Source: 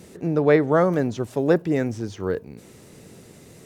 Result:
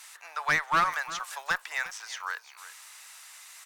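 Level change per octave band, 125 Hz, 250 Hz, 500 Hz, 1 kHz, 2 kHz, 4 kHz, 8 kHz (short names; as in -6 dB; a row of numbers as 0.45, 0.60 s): -23.0, -26.5, -24.5, +1.0, +4.0, +6.0, +6.5 dB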